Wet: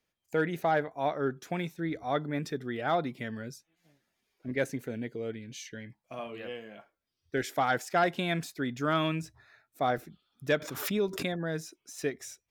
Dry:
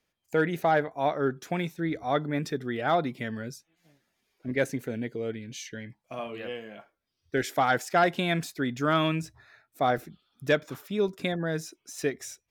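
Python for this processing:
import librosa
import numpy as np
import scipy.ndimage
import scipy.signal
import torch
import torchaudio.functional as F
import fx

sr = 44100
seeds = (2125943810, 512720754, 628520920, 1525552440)

y = fx.pre_swell(x, sr, db_per_s=56.0, at=(10.57, 11.25))
y = y * 10.0 ** (-3.5 / 20.0)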